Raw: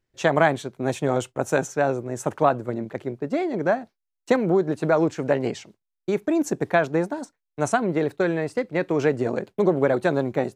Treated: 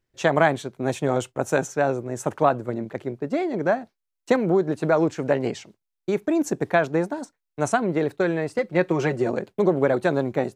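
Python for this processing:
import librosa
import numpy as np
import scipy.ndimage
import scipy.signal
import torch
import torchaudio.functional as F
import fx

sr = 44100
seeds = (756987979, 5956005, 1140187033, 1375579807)

y = fx.comb(x, sr, ms=5.5, depth=0.64, at=(8.58, 9.31))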